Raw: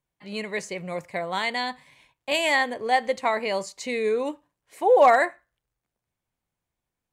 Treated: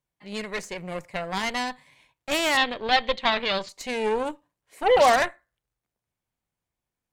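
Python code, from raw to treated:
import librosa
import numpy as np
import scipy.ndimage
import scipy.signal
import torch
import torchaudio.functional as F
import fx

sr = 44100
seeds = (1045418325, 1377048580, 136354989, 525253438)

y = fx.cheby_harmonics(x, sr, harmonics=(8,), levels_db=(-16,), full_scale_db=-8.0)
y = fx.lowpass_res(y, sr, hz=3600.0, q=4.1, at=(2.57, 3.69))
y = F.gain(torch.from_numpy(y), -2.0).numpy()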